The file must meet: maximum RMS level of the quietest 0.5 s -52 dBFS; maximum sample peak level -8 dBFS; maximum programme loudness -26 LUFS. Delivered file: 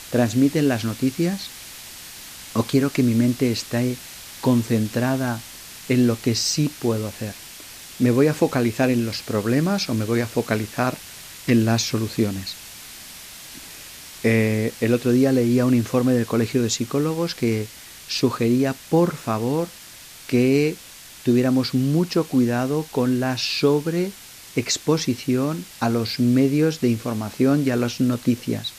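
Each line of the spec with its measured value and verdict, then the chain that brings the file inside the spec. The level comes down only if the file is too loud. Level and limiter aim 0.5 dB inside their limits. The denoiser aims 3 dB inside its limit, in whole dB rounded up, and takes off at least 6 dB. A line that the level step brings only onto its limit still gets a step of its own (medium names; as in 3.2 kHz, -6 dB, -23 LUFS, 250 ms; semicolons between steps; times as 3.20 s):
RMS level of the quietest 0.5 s -43 dBFS: fail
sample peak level -5.5 dBFS: fail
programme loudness -21.5 LUFS: fail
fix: noise reduction 7 dB, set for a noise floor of -43 dBFS; trim -5 dB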